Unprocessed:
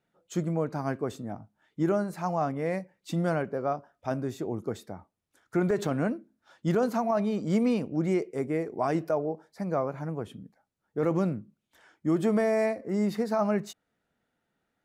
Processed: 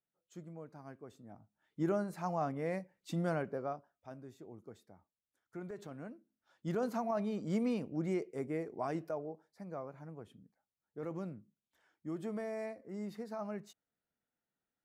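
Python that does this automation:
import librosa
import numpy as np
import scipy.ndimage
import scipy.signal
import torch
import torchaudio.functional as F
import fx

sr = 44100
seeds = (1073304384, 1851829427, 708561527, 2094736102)

y = fx.gain(x, sr, db=fx.line((1.1, -20.0), (1.85, -7.0), (3.54, -7.0), (4.11, -19.0), (6.13, -19.0), (6.86, -8.5), (8.66, -8.5), (9.66, -15.0)))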